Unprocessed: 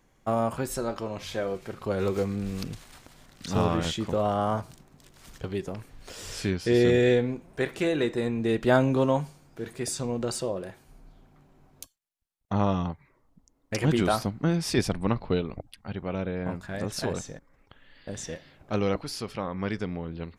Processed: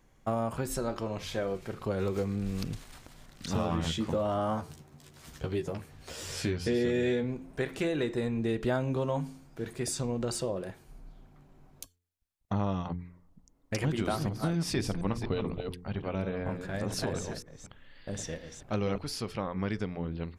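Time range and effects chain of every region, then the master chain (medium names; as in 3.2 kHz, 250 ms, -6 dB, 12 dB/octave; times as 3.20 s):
3.53–7.24 s: high-pass 52 Hz + doubling 13 ms -4.5 dB
13.81–18.98 s: chunks repeated in reverse 241 ms, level -9 dB + hum notches 60/120/180/240/300/360/420/480 Hz
whole clip: bass shelf 150 Hz +5 dB; de-hum 88.09 Hz, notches 5; compression 3:1, threshold -26 dBFS; trim -1.5 dB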